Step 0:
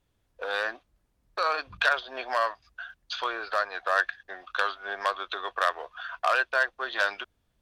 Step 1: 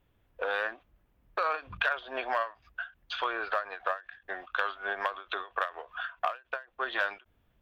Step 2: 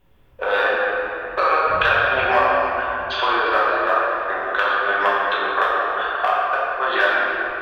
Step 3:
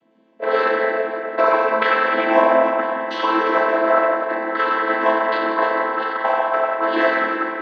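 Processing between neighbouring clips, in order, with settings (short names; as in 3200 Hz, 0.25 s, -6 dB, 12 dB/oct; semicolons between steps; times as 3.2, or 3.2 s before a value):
compressor 2.5:1, threshold -33 dBFS, peak gain reduction 10 dB; band shelf 6600 Hz -12.5 dB; ending taper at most 230 dB/s; gain +4 dB
shoebox room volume 220 m³, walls hard, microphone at 1.1 m; gain +7 dB
chord vocoder minor triad, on A3; gain +2 dB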